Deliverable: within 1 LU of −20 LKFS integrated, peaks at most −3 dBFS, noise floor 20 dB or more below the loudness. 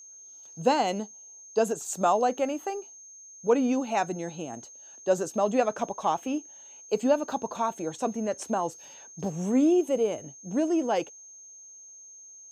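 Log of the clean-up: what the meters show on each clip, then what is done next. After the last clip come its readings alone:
interfering tone 6,400 Hz; level of the tone −46 dBFS; integrated loudness −28.0 LKFS; sample peak −10.0 dBFS; target loudness −20.0 LKFS
→ notch filter 6,400 Hz, Q 30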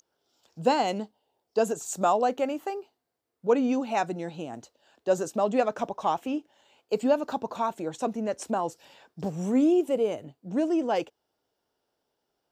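interfering tone none found; integrated loudness −28.0 LKFS; sample peak −10.0 dBFS; target loudness −20.0 LKFS
→ level +8 dB
brickwall limiter −3 dBFS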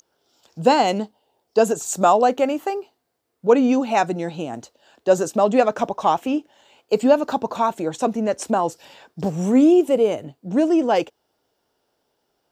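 integrated loudness −20.0 LKFS; sample peak −3.0 dBFS; background noise floor −73 dBFS

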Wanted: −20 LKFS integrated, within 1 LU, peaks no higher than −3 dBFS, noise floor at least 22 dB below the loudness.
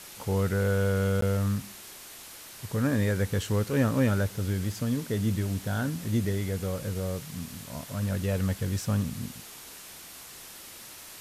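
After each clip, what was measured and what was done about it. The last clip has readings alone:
number of dropouts 1; longest dropout 13 ms; background noise floor −46 dBFS; target noise floor −51 dBFS; integrated loudness −29.0 LKFS; sample peak −13.0 dBFS; target loudness −20.0 LKFS
→ repair the gap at 0:01.21, 13 ms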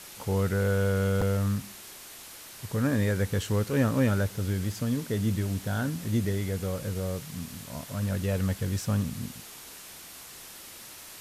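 number of dropouts 0; background noise floor −46 dBFS; target noise floor −51 dBFS
→ broadband denoise 6 dB, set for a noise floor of −46 dBFS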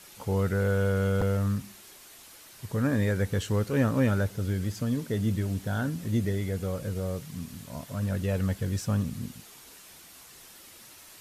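background noise floor −51 dBFS; integrated loudness −29.0 LKFS; sample peak −13.0 dBFS; target loudness −20.0 LKFS
→ level +9 dB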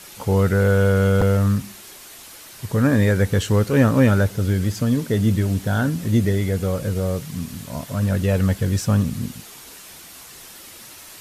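integrated loudness −20.0 LKFS; sample peak −4.0 dBFS; background noise floor −42 dBFS

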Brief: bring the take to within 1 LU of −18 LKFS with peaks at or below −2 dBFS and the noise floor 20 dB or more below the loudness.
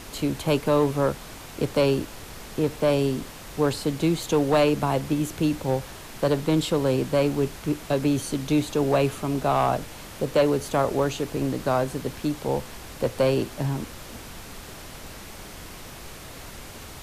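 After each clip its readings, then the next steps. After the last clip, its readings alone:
share of clipped samples 0.6%; peaks flattened at −13.5 dBFS; background noise floor −41 dBFS; target noise floor −45 dBFS; integrated loudness −25.0 LKFS; sample peak −13.5 dBFS; target loudness −18.0 LKFS
→ clipped peaks rebuilt −13.5 dBFS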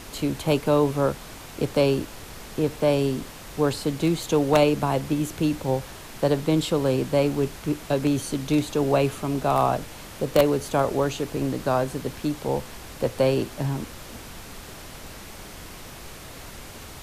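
share of clipped samples 0.0%; background noise floor −41 dBFS; target noise floor −45 dBFS
→ noise reduction from a noise print 6 dB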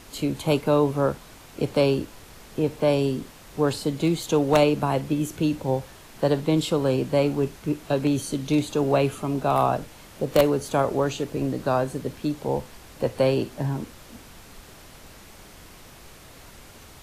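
background noise floor −47 dBFS; integrated loudness −24.5 LKFS; sample peak −4.5 dBFS; target loudness −18.0 LKFS
→ level +6.5 dB
brickwall limiter −2 dBFS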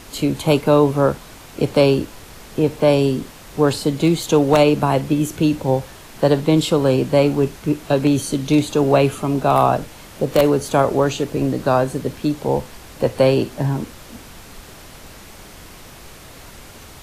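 integrated loudness −18.0 LKFS; sample peak −2.0 dBFS; background noise floor −41 dBFS

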